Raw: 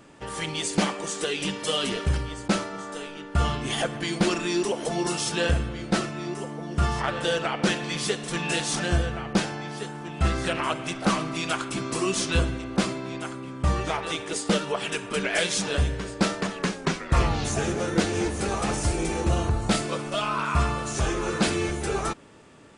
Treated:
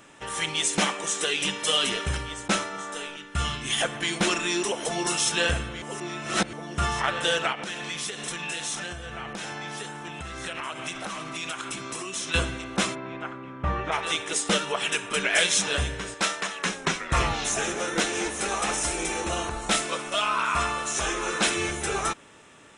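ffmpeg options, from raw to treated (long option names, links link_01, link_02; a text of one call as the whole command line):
ffmpeg -i in.wav -filter_complex "[0:a]asettb=1/sr,asplit=3[link_01][link_02][link_03];[link_01]atrim=end=3.164[link_04];[link_02]atrim=start=3.16:end=3.81,asetpts=PTS-STARTPTS,afade=type=in:duration=0.004:curve=qsin,afade=type=out:start_time=0.646:duration=0.004:curve=qsin,equalizer=frequency=670:width=0.69:gain=-8.5[link_05];[link_03]atrim=start=3.806[link_06];[link_04][link_05]acrossfade=duration=0.004:curve1=hsin:curve2=qsin[link_07];[link_07][link_06]acrossfade=duration=0.004:curve1=qsin:curve2=hsin,asettb=1/sr,asplit=3[link_08][link_09][link_10];[link_08]atrim=end=7.524[link_11];[link_09]atrim=start=7.52:end=12.34,asetpts=PTS-STARTPTS,afade=type=in:duration=0.004:curve=qsin,afade=type=out:start_time=4.816:duration=0.004:curve=qsin,acompressor=threshold=-30dB:ratio=16:attack=3.2:release=140:knee=1:detection=peak[link_12];[link_10]atrim=start=12.336[link_13];[link_11][link_12]acrossfade=duration=0.004:curve1=hsin:curve2=qsin[link_14];[link_14][link_13]acrossfade=duration=0.004:curve1=qsin:curve2=hsin,asplit=3[link_15][link_16][link_17];[link_15]afade=type=out:start_time=12.94:duration=0.02[link_18];[link_16]lowpass=1900,afade=type=in:start_time=12.94:duration=0.02,afade=type=out:start_time=13.91:duration=0.02[link_19];[link_17]afade=type=in:start_time=13.91:duration=0.02[link_20];[link_18][link_19][link_20]amix=inputs=3:normalize=0,asettb=1/sr,asplit=3[link_21][link_22][link_23];[link_21]atrim=end=16.144[link_24];[link_22]atrim=start=16.14:end=16.66,asetpts=PTS-STARTPTS,afade=type=in:duration=0.004:curve=qsin,afade=type=out:start_time=0.516:duration=0.004:curve=qsin,lowshelf=frequency=390:gain=-12[link_25];[link_23]atrim=start=16.656[link_26];[link_24][link_25]acrossfade=duration=0.004:curve1=hsin:curve2=qsin[link_27];[link_27][link_26]acrossfade=duration=0.004:curve1=qsin:curve2=hsin,asettb=1/sr,asplit=3[link_28][link_29][link_30];[link_28]atrim=end=17.334[link_31];[link_29]atrim=start=17.33:end=21.57,asetpts=PTS-STARTPTS,afade=type=in:duration=0.004:curve=qsin,afade=type=out:start_time=4.236:duration=0.004:curve=qsin,equalizer=frequency=100:width=1.2:gain=-13.5[link_32];[link_30]atrim=start=21.566[link_33];[link_31][link_32]acrossfade=duration=0.004:curve1=hsin:curve2=qsin[link_34];[link_34][link_33]acrossfade=duration=0.004:curve1=qsin:curve2=hsin,asplit=3[link_35][link_36][link_37];[link_35]atrim=end=5.822[link_38];[link_36]atrim=start=5.818:end=6.532,asetpts=PTS-STARTPTS,areverse[link_39];[link_37]atrim=start=6.528[link_40];[link_38][link_39]acrossfade=duration=0.004:curve1=hsin:curve2=hsin[link_41];[link_41][link_40]acrossfade=duration=0.004:curve1=hsin:curve2=hsin,tiltshelf=frequency=750:gain=-5.5,bandreject=frequency=4600:width=5.4" out.wav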